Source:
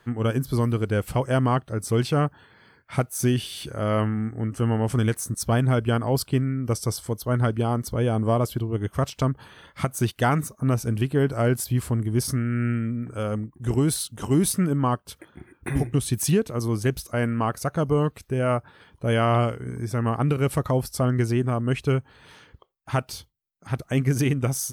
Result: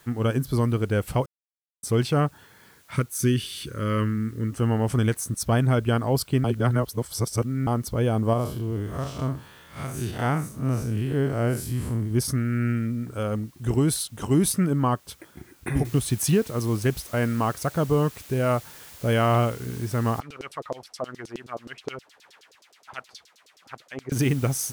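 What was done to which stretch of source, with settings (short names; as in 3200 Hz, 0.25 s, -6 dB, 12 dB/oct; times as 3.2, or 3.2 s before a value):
1.26–1.83 mute
2.96–4.51 Butterworth band-stop 740 Hz, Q 1.3
6.44–7.67 reverse
8.33–12.11 time blur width 0.126 s
15.85 noise floor step -59 dB -46 dB
20.2–24.12 LFO band-pass saw down 9.5 Hz 380–6000 Hz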